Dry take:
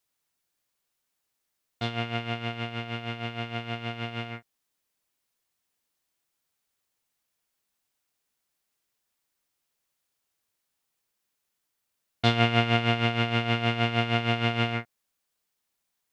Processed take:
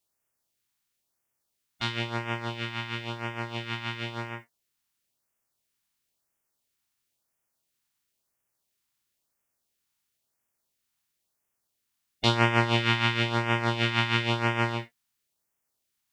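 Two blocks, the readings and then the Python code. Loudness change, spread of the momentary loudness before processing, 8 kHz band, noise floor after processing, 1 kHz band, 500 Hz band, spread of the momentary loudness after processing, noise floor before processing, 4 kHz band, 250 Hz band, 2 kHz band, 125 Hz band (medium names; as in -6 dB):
0.0 dB, 11 LU, no reading, -81 dBFS, +0.5 dB, -1.5 dB, 11 LU, -81 dBFS, +0.5 dB, -1.5 dB, +1.5 dB, -1.5 dB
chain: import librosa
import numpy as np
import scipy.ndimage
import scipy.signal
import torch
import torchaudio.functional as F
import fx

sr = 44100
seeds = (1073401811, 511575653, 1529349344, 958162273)

y = fx.spec_clip(x, sr, under_db=15)
y = fx.filter_lfo_notch(y, sr, shape='sine', hz=0.98, low_hz=470.0, high_hz=4200.0, q=1.0)
y = fx.rev_gated(y, sr, seeds[0], gate_ms=90, shape='falling', drr_db=6.0)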